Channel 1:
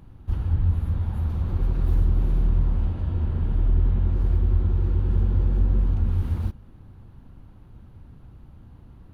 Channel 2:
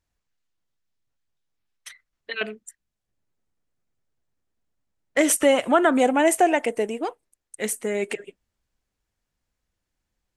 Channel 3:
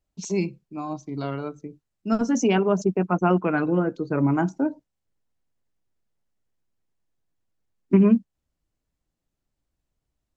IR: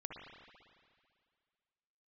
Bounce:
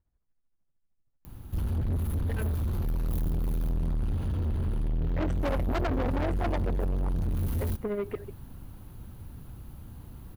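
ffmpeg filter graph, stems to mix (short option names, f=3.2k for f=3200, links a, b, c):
-filter_complex "[0:a]aemphasis=mode=production:type=50fm,adelay=1250,volume=2.5dB[a];[1:a]lowpass=1.3k,lowshelf=f=290:g=9.5,tremolo=f=13:d=0.68,volume=-1.5dB[b];[a][b]amix=inputs=2:normalize=0,highshelf=f=7.2k:g=7,asoftclip=type=tanh:threshold=-25.5dB"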